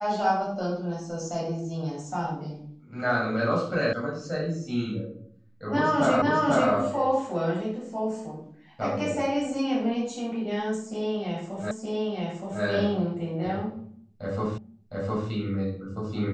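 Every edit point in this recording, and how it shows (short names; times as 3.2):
3.93 sound cut off
6.22 repeat of the last 0.49 s
11.71 repeat of the last 0.92 s
14.58 repeat of the last 0.71 s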